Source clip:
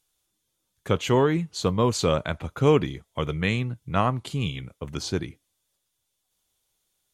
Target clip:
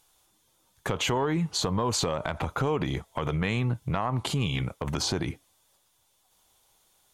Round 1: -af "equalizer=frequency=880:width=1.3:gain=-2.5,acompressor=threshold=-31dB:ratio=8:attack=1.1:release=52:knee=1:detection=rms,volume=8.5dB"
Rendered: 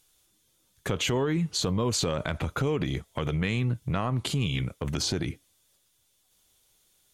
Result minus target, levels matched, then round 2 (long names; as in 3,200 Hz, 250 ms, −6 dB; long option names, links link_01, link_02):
1,000 Hz band −4.5 dB
-af "equalizer=frequency=880:width=1.3:gain=8.5,acompressor=threshold=-31dB:ratio=8:attack=1.1:release=52:knee=1:detection=rms,volume=8.5dB"